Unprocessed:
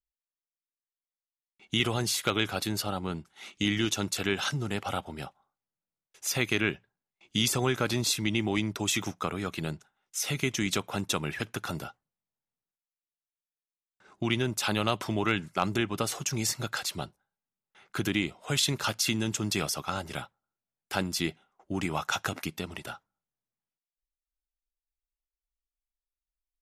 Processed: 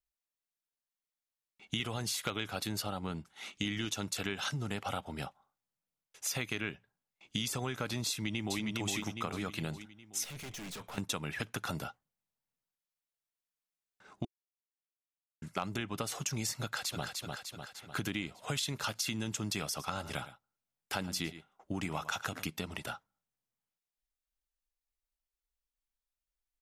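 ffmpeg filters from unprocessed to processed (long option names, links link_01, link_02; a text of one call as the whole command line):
ffmpeg -i in.wav -filter_complex "[0:a]asplit=2[link_01][link_02];[link_02]afade=type=in:start_time=8.09:duration=0.01,afade=type=out:start_time=8.62:duration=0.01,aecho=0:1:410|820|1230|1640|2050:0.668344|0.267338|0.106935|0.042774|0.0171096[link_03];[link_01][link_03]amix=inputs=2:normalize=0,asettb=1/sr,asplit=3[link_04][link_05][link_06];[link_04]atrim=end=10.244[link_07];[link_05]atrim=start=10.24:end=10.98,asetpts=PTS-STARTPTS,afade=type=in:duration=0.004:curve=qsin,afade=type=out:start_time=0.736:duration=0.004:curve=qsin,aeval=exprs='(tanh(126*val(0)+0.3)-tanh(0.3))/126':channel_layout=same[link_08];[link_06]atrim=start=10.976[link_09];[link_07][link_08]acrossfade=duration=0.004:curve1=hsin:curve2=qsin[link_10];[link_10][link_09]acrossfade=duration=0.004:curve1=qsin:curve2=hsin,asplit=2[link_11][link_12];[link_12]afade=type=in:start_time=16.62:duration=0.01,afade=type=out:start_time=17.05:duration=0.01,aecho=0:1:300|600|900|1200|1500|1800|2100:0.473151|0.260233|0.143128|0.0787205|0.0432963|0.023813|0.0130971[link_13];[link_11][link_13]amix=inputs=2:normalize=0,asettb=1/sr,asplit=3[link_14][link_15][link_16];[link_14]atrim=end=19.664[link_17];[link_15]atrim=start=19.66:end=22.5,asetpts=PTS-STARTPTS,afade=type=in:duration=0.004:curve=qsin,afade=type=out:start_time=2.836:duration=0.004:curve=qsin,aecho=1:1:109:0.15,atrim=end_sample=125244[link_18];[link_16]atrim=start=22.496[link_19];[link_17][link_18]acrossfade=duration=0.004:curve1=hsin:curve2=qsin[link_20];[link_20][link_19]acrossfade=duration=0.004:curve1=qsin:curve2=hsin,asplit=3[link_21][link_22][link_23];[link_21]atrim=end=14.25,asetpts=PTS-STARTPTS,afade=type=out:start_time=14.246:duration=0.004:curve=hsin[link_24];[link_22]atrim=start=14.25:end=15.42,asetpts=PTS-STARTPTS,volume=0[link_25];[link_23]atrim=start=15.42,asetpts=PTS-STARTPTS,afade=type=in:duration=0.004:curve=hsin[link_26];[link_24][link_25][link_26]concat=n=3:v=0:a=1,equalizer=frequency=360:width_type=o:width=0.21:gain=-6.5,acompressor=threshold=-33dB:ratio=4" out.wav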